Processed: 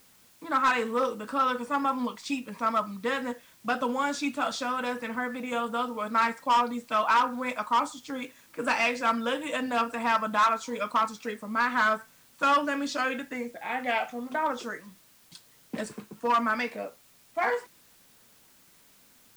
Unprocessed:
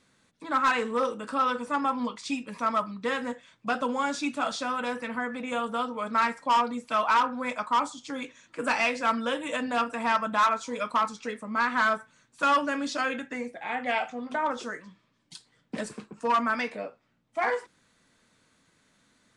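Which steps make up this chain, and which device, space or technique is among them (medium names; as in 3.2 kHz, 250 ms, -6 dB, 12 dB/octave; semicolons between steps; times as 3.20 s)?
plain cassette with noise reduction switched in (tape noise reduction on one side only decoder only; wow and flutter 23 cents; white noise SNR 30 dB)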